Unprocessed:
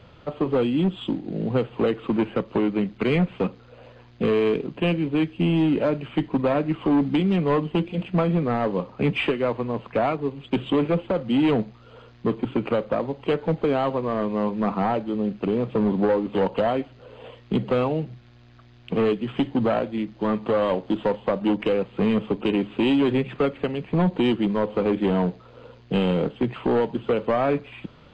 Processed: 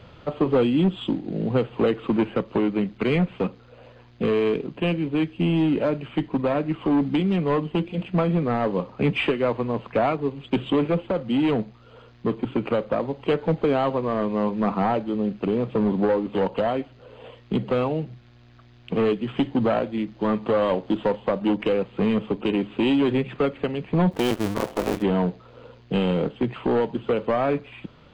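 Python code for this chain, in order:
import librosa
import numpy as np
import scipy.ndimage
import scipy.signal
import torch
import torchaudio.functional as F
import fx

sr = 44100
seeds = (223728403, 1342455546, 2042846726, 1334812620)

y = fx.cycle_switch(x, sr, every=2, mode='muted', at=(24.11, 25.01), fade=0.02)
y = fx.rider(y, sr, range_db=4, speed_s=2.0)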